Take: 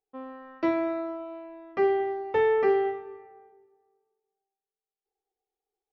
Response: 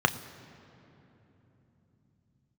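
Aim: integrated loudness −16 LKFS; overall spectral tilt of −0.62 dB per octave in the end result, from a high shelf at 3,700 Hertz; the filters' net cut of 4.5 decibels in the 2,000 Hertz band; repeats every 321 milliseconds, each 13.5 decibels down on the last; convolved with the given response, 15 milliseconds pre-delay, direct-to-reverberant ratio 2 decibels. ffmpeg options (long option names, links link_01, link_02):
-filter_complex "[0:a]equalizer=frequency=2000:width_type=o:gain=-4,highshelf=frequency=3700:gain=-5,aecho=1:1:321|642:0.211|0.0444,asplit=2[link_01][link_02];[1:a]atrim=start_sample=2205,adelay=15[link_03];[link_02][link_03]afir=irnorm=-1:irlink=0,volume=-15.5dB[link_04];[link_01][link_04]amix=inputs=2:normalize=0,volume=11.5dB"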